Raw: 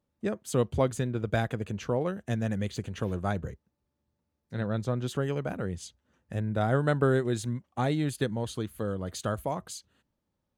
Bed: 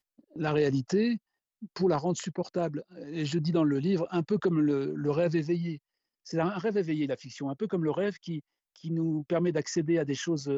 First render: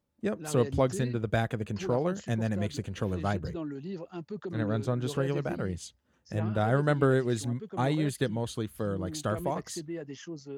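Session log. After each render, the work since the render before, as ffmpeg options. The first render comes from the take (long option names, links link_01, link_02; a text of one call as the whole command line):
ffmpeg -i in.wav -i bed.wav -filter_complex "[1:a]volume=-11dB[link_01];[0:a][link_01]amix=inputs=2:normalize=0" out.wav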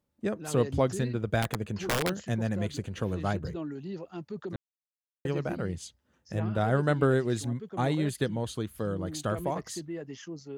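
ffmpeg -i in.wav -filter_complex "[0:a]asettb=1/sr,asplit=3[link_01][link_02][link_03];[link_01]atrim=end=1.424[link_04];[link_02]atrim=start=1.42:end=2.16,asetpts=PTS-STARTPTS,afade=type=in:duration=0.004:curve=qsin,afade=type=out:start_time=0.736:duration=0.004:curve=qsin,aeval=exprs='(mod(11.2*val(0)+1,2)-1)/11.2':channel_layout=same[link_05];[link_03]atrim=start=2.156[link_06];[link_04][link_05]acrossfade=duration=0.004:curve1=hsin:curve2=qsin[link_07];[link_07][link_06]acrossfade=duration=0.004:curve1=qsin:curve2=hsin,asplit=3[link_08][link_09][link_10];[link_08]atrim=end=4.56,asetpts=PTS-STARTPTS,afade=type=out:start_time=4.556:duration=0.004:curve=hsin[link_11];[link_09]atrim=start=4.56:end=5.25,asetpts=PTS-STARTPTS,volume=0[link_12];[link_10]atrim=start=5.25,asetpts=PTS-STARTPTS,afade=type=in:duration=0.004:curve=hsin[link_13];[link_11][link_12][link_13]concat=n=3:v=0:a=1" out.wav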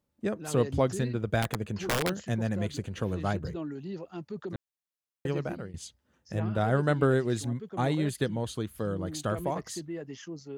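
ffmpeg -i in.wav -filter_complex "[0:a]asplit=2[link_01][link_02];[link_01]atrim=end=5.74,asetpts=PTS-STARTPTS,afade=type=out:start_time=5.3:duration=0.44:curve=qsin:silence=0.11885[link_03];[link_02]atrim=start=5.74,asetpts=PTS-STARTPTS,afade=type=in:duration=0.004:curve=hsin:silence=0.11885[link_04];[link_03][link_04]concat=n=2:v=0:a=1" out.wav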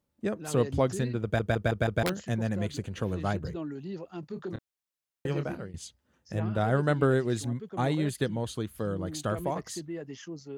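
ffmpeg -i in.wav -filter_complex "[0:a]asettb=1/sr,asplit=3[link_01][link_02][link_03];[link_01]atrim=end=4.204[link_04];[link_02]atrim=start=4.2:end=5.64,asetpts=PTS-STARTPTS,afade=type=in:duration=0.004:curve=qsin,afade=type=out:start_time=1.436:duration=0.004:curve=qsin,asplit=2[link_05][link_06];[link_06]adelay=27,volume=-8.5dB[link_07];[link_05][link_07]amix=inputs=2:normalize=0,atrim=end_sample=63504[link_08];[link_03]atrim=start=5.636[link_09];[link_04][link_08]acrossfade=duration=0.004:curve1=hsin:curve2=qsin[link_10];[link_10][link_09]acrossfade=duration=0.004:curve1=qsin:curve2=hsin,asplit=6[link_11][link_12][link_13][link_14][link_15][link_16];[link_11]atrim=end=1.392[link_17];[link_12]atrim=start=1.228:end=1.392[link_18];[link_13]atrim=start=1.228:end=1.392[link_19];[link_14]atrim=start=1.228:end=1.392[link_20];[link_15]atrim=start=1.228:end=1.392[link_21];[link_16]atrim=start=2.028[link_22];[link_17][link_18]acrossfade=duration=0.004:curve1=hsin:curve2=hsin[link_23];[link_23][link_19]acrossfade=duration=0.004:curve1=hsin:curve2=hsin[link_24];[link_24][link_20]acrossfade=duration=0.004:curve1=hsin:curve2=hsin[link_25];[link_25][link_21]acrossfade=duration=0.004:curve1=hsin:curve2=hsin[link_26];[link_26][link_22]acrossfade=duration=0.004:curve1=hsin:curve2=hsin" out.wav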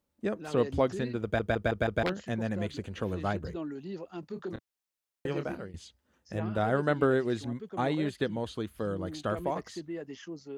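ffmpeg -i in.wav -filter_complex "[0:a]acrossover=split=4700[link_01][link_02];[link_02]acompressor=threshold=-59dB:ratio=4:attack=1:release=60[link_03];[link_01][link_03]amix=inputs=2:normalize=0,equalizer=frequency=130:width=1.9:gain=-7.5" out.wav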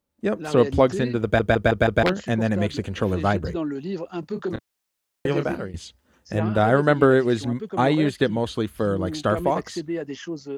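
ffmpeg -i in.wav -af "dynaudnorm=framelen=160:gausssize=3:maxgain=10dB" out.wav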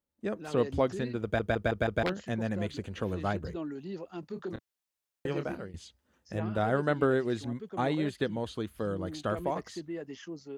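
ffmpeg -i in.wav -af "volume=-10dB" out.wav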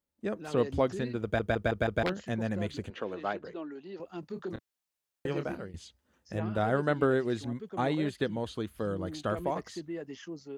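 ffmpeg -i in.wav -filter_complex "[0:a]asettb=1/sr,asplit=3[link_01][link_02][link_03];[link_01]atrim=end=2.904[link_04];[link_02]atrim=start=2.9:end=4,asetpts=PTS-STARTPTS,afade=type=in:duration=0.004:curve=qsin,afade=type=out:start_time=1.096:duration=0.004:curve=qsin,highpass=330,lowpass=4100[link_05];[link_03]atrim=start=3.996[link_06];[link_04][link_05]acrossfade=duration=0.004:curve1=hsin:curve2=qsin[link_07];[link_07][link_06]acrossfade=duration=0.004:curve1=qsin:curve2=hsin" out.wav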